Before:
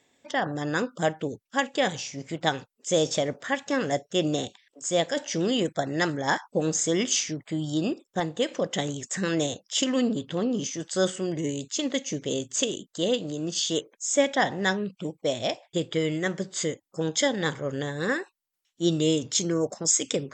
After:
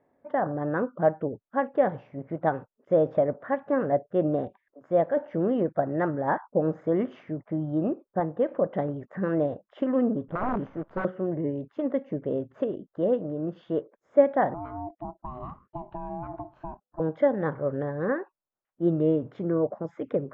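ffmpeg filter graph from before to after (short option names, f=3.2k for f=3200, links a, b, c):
-filter_complex "[0:a]asettb=1/sr,asplit=3[a][b][c];[a]atrim=end=10.284[d];[b]atrim=start=10.28:end=11.05,asetpts=PTS-STARTPTS,afade=t=in:d=0.004:c=qsin,afade=t=out:st=0.766:d=0.004:c=qsin,equalizer=f=1.7k:t=o:w=0.6:g=-8.5,aeval=exprs='(mod(11.2*val(0)+1,2)-1)/11.2':c=same,acrusher=bits=7:dc=4:mix=0:aa=0.000001[e];[c]atrim=start=11.046[f];[d][e]acrossfade=d=0.004:c1=hsin:c2=qsin[g];[g][f]acrossfade=d=0.004:c1=qsin:c2=hsin,asettb=1/sr,asplit=3[h][i][j];[h]atrim=end=14.544[k];[i]atrim=start=14.54:end=17,asetpts=PTS-STARTPTS,afade=t=in:d=0.004:c=qsin,afade=t=out:st=2.456:d=0.004:c=qsin,acompressor=threshold=-28dB:ratio=10:attack=3.2:release=140:knee=1:detection=peak,equalizer=f=1.6k:w=0.83:g=-6.5,aeval=exprs='val(0)*sin(2*PI*500*n/s)':c=same[l];[j]atrim=start=16.996[m];[k][l]acrossfade=d=0.004:c1=hsin:c2=qsin[n];[n][m]acrossfade=d=0.004:c1=qsin:c2=hsin,lowpass=f=1.4k:w=0.5412,lowpass=f=1.4k:w=1.3066,equalizer=f=600:t=o:w=0.33:g=5.5"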